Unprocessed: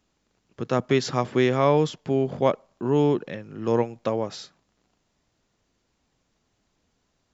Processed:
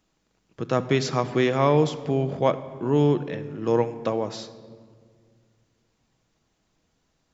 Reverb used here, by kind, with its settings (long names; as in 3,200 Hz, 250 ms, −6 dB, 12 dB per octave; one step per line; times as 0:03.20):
rectangular room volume 3,100 cubic metres, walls mixed, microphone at 0.61 metres